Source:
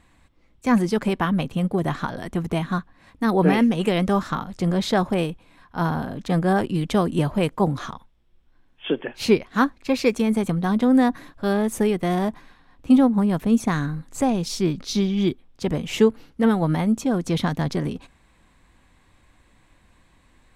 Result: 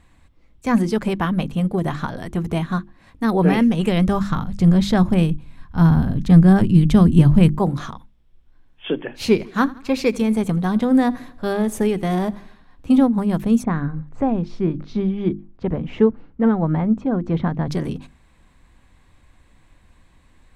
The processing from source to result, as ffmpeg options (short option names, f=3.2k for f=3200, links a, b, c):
-filter_complex "[0:a]asettb=1/sr,asplit=3[a][b][c];[a]atrim=end=3.294[d];[b]atrim=start=3.29:end=7.59,asetpts=PTS-STARTPTS,afade=t=in:d=0.004:c=qsin,afade=t=out:st=4.296:d=0.004:c=qsin,asubboost=boost=6:cutoff=220[e];[c]atrim=start=7.586[f];[d][e]acrossfade=d=0.004:c1=hsin:c2=qsin[g];[g][f]acrossfade=d=0.004:c1=qsin:c2=hsin,asettb=1/sr,asplit=3[h][i][j];[h]atrim=end=9.034[k];[i]atrim=start=9.03:end=13.07,asetpts=PTS-STARTPTS,afade=t=in:d=0.004:c=qsin,afade=t=out:st=4.036:d=0.004:c=qsin,aecho=1:1:83|166|249|332:0.0841|0.0421|0.021|0.0105,atrim=end_sample=178164[l];[j]atrim=start=13.066[m];[k][l]acrossfade=d=0.004:c1=hsin:c2=qsin[n];[n][m]acrossfade=d=0.004:c1=qsin:c2=hsin,asplit=3[o][p][q];[o]afade=t=out:st=13.62:d=0.02[r];[p]lowpass=1.6k,afade=t=in:st=13.62:d=0.02,afade=t=out:st=17.67:d=0.02[s];[q]afade=t=in:st=17.67:d=0.02[t];[r][s][t]amix=inputs=3:normalize=0,lowshelf=f=160:g=7,bandreject=f=50:t=h:w=6,bandreject=f=100:t=h:w=6,bandreject=f=150:t=h:w=6,bandreject=f=200:t=h:w=6,bandreject=f=250:t=h:w=6,bandreject=f=300:t=h:w=6,bandreject=f=350:t=h:w=6"